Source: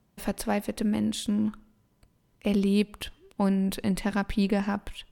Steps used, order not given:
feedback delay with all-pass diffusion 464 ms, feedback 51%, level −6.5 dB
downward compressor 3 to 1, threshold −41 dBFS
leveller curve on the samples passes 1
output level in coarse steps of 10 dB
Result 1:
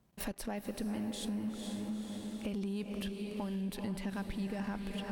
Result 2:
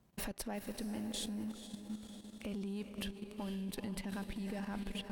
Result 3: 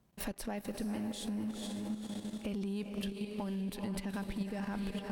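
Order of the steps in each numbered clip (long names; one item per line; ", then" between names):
output level in coarse steps, then feedback delay with all-pass diffusion, then downward compressor, then leveller curve on the samples
downward compressor, then leveller curve on the samples, then feedback delay with all-pass diffusion, then output level in coarse steps
feedback delay with all-pass diffusion, then output level in coarse steps, then downward compressor, then leveller curve on the samples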